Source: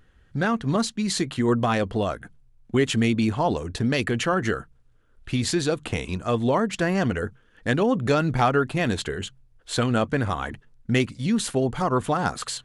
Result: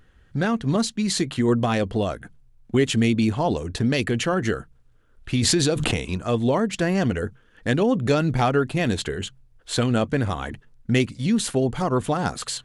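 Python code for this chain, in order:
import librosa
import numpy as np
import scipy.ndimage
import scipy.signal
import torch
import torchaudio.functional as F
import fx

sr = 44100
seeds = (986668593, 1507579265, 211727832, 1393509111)

y = fx.dynamic_eq(x, sr, hz=1200.0, q=0.99, threshold_db=-37.0, ratio=4.0, max_db=-5)
y = fx.pre_swell(y, sr, db_per_s=21.0, at=(5.37, 6.03))
y = y * 10.0 ** (2.0 / 20.0)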